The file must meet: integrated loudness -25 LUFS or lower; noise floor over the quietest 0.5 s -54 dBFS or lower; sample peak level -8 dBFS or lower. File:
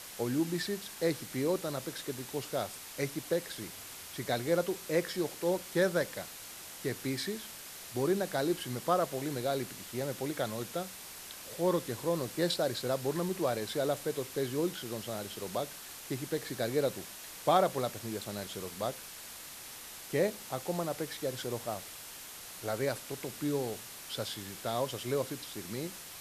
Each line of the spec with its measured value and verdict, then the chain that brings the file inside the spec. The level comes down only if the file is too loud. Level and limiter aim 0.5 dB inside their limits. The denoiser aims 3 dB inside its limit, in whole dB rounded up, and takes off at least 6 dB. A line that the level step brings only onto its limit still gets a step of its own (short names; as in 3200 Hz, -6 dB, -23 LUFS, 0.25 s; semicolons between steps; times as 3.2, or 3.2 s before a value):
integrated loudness -35.0 LUFS: OK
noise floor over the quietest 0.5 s -47 dBFS: fail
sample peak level -15.5 dBFS: OK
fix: denoiser 10 dB, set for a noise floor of -47 dBFS